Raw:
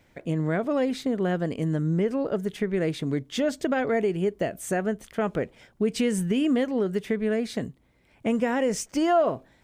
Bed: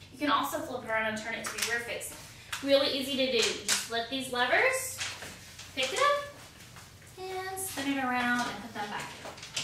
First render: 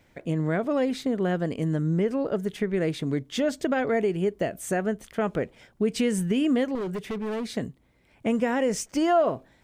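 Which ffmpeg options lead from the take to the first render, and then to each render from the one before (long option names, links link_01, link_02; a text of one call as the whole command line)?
ffmpeg -i in.wav -filter_complex "[0:a]asettb=1/sr,asplit=3[link_01][link_02][link_03];[link_01]atrim=end=6.754[link_04];[link_02]atrim=start=6.75:end=7.51,asetpts=PTS-STARTPTS,afade=type=in:duration=0.004:curve=qsin,afade=type=out:start_time=0.756:duration=0.004:curve=qsin,asoftclip=type=hard:threshold=-27.5dB[link_05];[link_03]atrim=start=7.506[link_06];[link_04][link_05]acrossfade=duration=0.004:curve1=hsin:curve2=qsin[link_07];[link_07][link_06]acrossfade=duration=0.004:curve1=qsin:curve2=hsin" out.wav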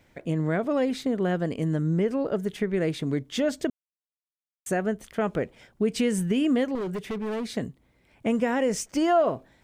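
ffmpeg -i in.wav -filter_complex "[0:a]asplit=3[link_01][link_02][link_03];[link_01]atrim=end=3.7,asetpts=PTS-STARTPTS,afade=type=out:start_time=3.696:duration=0.004:curve=hsin[link_04];[link_02]atrim=start=3.7:end=4.66,asetpts=PTS-STARTPTS,volume=0[link_05];[link_03]atrim=start=4.66,asetpts=PTS-STARTPTS,afade=type=in:duration=0.004:curve=hsin[link_06];[link_04][link_05][link_06]concat=n=3:v=0:a=1" out.wav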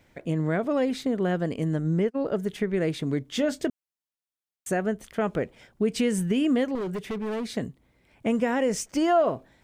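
ffmpeg -i in.wav -filter_complex "[0:a]asplit=3[link_01][link_02][link_03];[link_01]afade=type=out:start_time=1.63:duration=0.02[link_04];[link_02]agate=range=-39dB:threshold=-27dB:ratio=16:release=100:detection=peak,afade=type=in:start_time=1.63:duration=0.02,afade=type=out:start_time=2.21:duration=0.02[link_05];[link_03]afade=type=in:start_time=2.21:duration=0.02[link_06];[link_04][link_05][link_06]amix=inputs=3:normalize=0,asettb=1/sr,asplit=3[link_07][link_08][link_09];[link_07]atrim=end=3.254[link_10];[link_08]atrim=start=3.25:end=3.68,asetpts=PTS-STARTPTS,afade=type=in:duration=0.004:curve=qsin,afade=type=out:start_time=0.426:duration=0.004:curve=qsin,asplit=2[link_11][link_12];[link_12]adelay=24,volume=-13.5dB[link_13];[link_11][link_13]amix=inputs=2:normalize=0,atrim=end_sample=18963[link_14];[link_09]atrim=start=3.676[link_15];[link_10][link_14]acrossfade=duration=0.004:curve1=hsin:curve2=qsin[link_16];[link_16][link_15]acrossfade=duration=0.004:curve1=qsin:curve2=hsin" out.wav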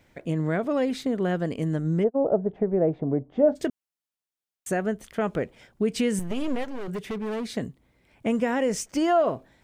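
ffmpeg -i in.wav -filter_complex "[0:a]asplit=3[link_01][link_02][link_03];[link_01]afade=type=out:start_time=2.03:duration=0.02[link_04];[link_02]lowpass=frequency=720:width_type=q:width=3.2,afade=type=in:start_time=2.03:duration=0.02,afade=type=out:start_time=3.55:duration=0.02[link_05];[link_03]afade=type=in:start_time=3.55:duration=0.02[link_06];[link_04][link_05][link_06]amix=inputs=3:normalize=0,asettb=1/sr,asplit=3[link_07][link_08][link_09];[link_07]atrim=end=6.194[link_10];[link_08]atrim=start=6.19:end=6.88,asetpts=PTS-STARTPTS,afade=type=in:duration=0.004:curve=qsin,afade=type=out:start_time=0.686:duration=0.004:curve=qsin,aeval=exprs='max(val(0),0)':channel_layout=same[link_11];[link_09]atrim=start=6.876[link_12];[link_10][link_11]acrossfade=duration=0.004:curve1=hsin:curve2=qsin[link_13];[link_13][link_12]acrossfade=duration=0.004:curve1=qsin:curve2=hsin" out.wav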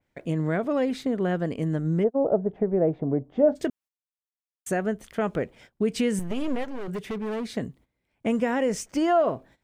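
ffmpeg -i in.wav -af "agate=range=-15dB:threshold=-51dB:ratio=16:detection=peak,adynamicequalizer=threshold=0.00562:dfrequency=3000:dqfactor=0.7:tfrequency=3000:tqfactor=0.7:attack=5:release=100:ratio=0.375:range=2:mode=cutabove:tftype=highshelf" out.wav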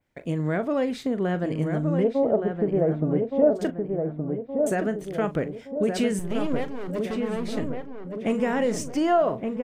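ffmpeg -i in.wav -filter_complex "[0:a]asplit=2[link_01][link_02];[link_02]adelay=40,volume=-13.5dB[link_03];[link_01][link_03]amix=inputs=2:normalize=0,asplit=2[link_04][link_05];[link_05]adelay=1169,lowpass=frequency=1600:poles=1,volume=-4.5dB,asplit=2[link_06][link_07];[link_07]adelay=1169,lowpass=frequency=1600:poles=1,volume=0.5,asplit=2[link_08][link_09];[link_09]adelay=1169,lowpass=frequency=1600:poles=1,volume=0.5,asplit=2[link_10][link_11];[link_11]adelay=1169,lowpass=frequency=1600:poles=1,volume=0.5,asplit=2[link_12][link_13];[link_13]adelay=1169,lowpass=frequency=1600:poles=1,volume=0.5,asplit=2[link_14][link_15];[link_15]adelay=1169,lowpass=frequency=1600:poles=1,volume=0.5[link_16];[link_06][link_08][link_10][link_12][link_14][link_16]amix=inputs=6:normalize=0[link_17];[link_04][link_17]amix=inputs=2:normalize=0" out.wav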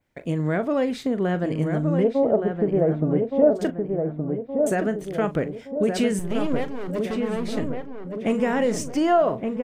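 ffmpeg -i in.wav -af "volume=2dB" out.wav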